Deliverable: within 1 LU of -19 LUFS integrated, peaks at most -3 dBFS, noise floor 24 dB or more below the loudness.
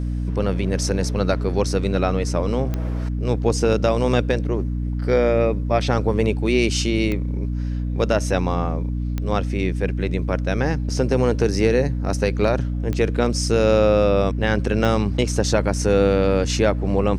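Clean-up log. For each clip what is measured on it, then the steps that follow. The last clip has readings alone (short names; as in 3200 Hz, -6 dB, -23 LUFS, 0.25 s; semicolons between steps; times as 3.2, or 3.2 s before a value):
clicks 5; hum 60 Hz; harmonics up to 300 Hz; hum level -21 dBFS; loudness -21.0 LUFS; peak -5.0 dBFS; loudness target -19.0 LUFS
-> de-click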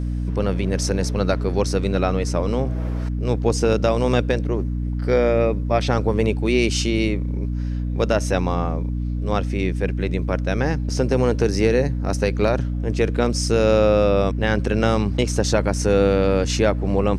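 clicks 0; hum 60 Hz; harmonics up to 300 Hz; hum level -21 dBFS
-> notches 60/120/180/240/300 Hz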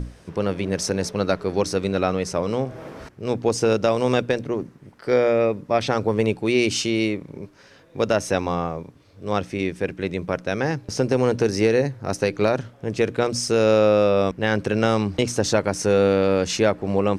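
hum none; loudness -22.0 LUFS; peak -6.5 dBFS; loudness target -19.0 LUFS
-> gain +3 dB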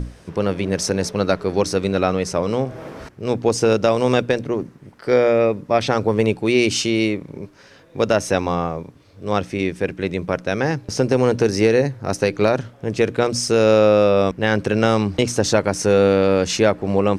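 loudness -19.0 LUFS; peak -3.5 dBFS; noise floor -48 dBFS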